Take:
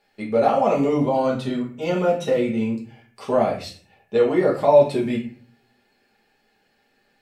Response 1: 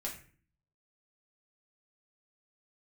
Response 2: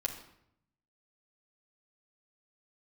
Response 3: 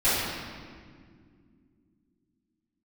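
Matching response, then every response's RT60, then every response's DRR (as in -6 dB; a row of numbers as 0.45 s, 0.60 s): 1; 0.45 s, 0.75 s, 2.1 s; -3.5 dB, -1.5 dB, -16.5 dB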